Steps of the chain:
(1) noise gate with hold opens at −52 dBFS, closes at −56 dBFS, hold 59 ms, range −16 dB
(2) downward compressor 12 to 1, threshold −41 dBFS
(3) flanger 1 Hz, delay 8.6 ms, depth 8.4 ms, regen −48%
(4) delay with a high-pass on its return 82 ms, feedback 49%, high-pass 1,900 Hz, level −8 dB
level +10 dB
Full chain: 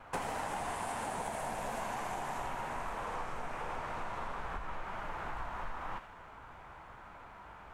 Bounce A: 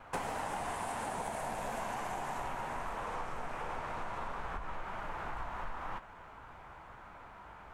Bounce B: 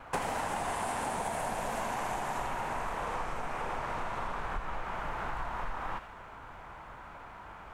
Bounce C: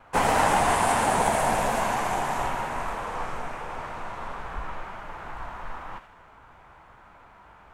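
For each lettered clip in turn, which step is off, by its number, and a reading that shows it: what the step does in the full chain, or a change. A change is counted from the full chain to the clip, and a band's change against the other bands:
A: 4, echo-to-direct ratio −11.0 dB to none audible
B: 3, change in integrated loudness +4.0 LU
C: 2, average gain reduction 6.5 dB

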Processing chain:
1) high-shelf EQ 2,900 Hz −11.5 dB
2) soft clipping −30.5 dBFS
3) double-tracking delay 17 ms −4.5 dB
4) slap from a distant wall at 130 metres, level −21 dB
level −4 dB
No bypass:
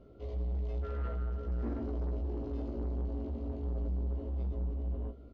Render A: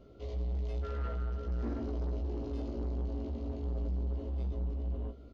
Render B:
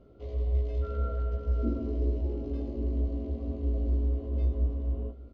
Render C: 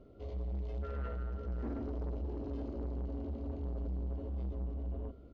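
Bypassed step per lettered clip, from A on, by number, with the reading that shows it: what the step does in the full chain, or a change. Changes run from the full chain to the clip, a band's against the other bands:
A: 1, 2 kHz band +2.0 dB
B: 2, distortion level −10 dB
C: 3, 2 kHz band +2.0 dB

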